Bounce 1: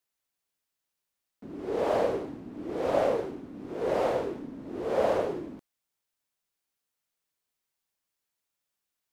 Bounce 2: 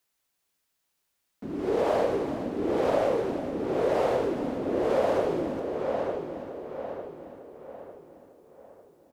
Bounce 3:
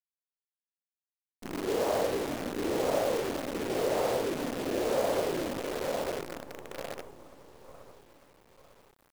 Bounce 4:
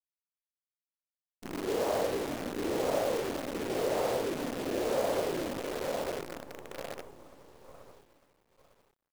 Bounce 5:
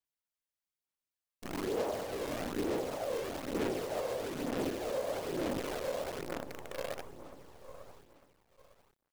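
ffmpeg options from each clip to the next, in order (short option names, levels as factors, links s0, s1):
-filter_complex "[0:a]asplit=2[s0][s1];[s1]adelay=900,lowpass=f=3000:p=1,volume=0.316,asplit=2[s2][s3];[s3]adelay=900,lowpass=f=3000:p=1,volume=0.42,asplit=2[s4][s5];[s5]adelay=900,lowpass=f=3000:p=1,volume=0.42,asplit=2[s6][s7];[s7]adelay=900,lowpass=f=3000:p=1,volume=0.42[s8];[s2][s4][s6][s8]amix=inputs=4:normalize=0[s9];[s0][s9]amix=inputs=2:normalize=0,acompressor=threshold=0.0316:ratio=3,asplit=2[s10][s11];[s11]aecho=0:1:415|830|1245|1660|2075:0.282|0.138|0.0677|0.0332|0.0162[s12];[s10][s12]amix=inputs=2:normalize=0,volume=2.24"
-af "acrusher=bits=6:dc=4:mix=0:aa=0.000001,volume=0.631"
-af "agate=range=0.0224:threshold=0.00282:ratio=3:detection=peak,volume=0.841"
-af "alimiter=level_in=1.68:limit=0.0631:level=0:latency=1:release=229,volume=0.596,aphaser=in_gain=1:out_gain=1:delay=1.9:decay=0.36:speed=1.1:type=sinusoidal"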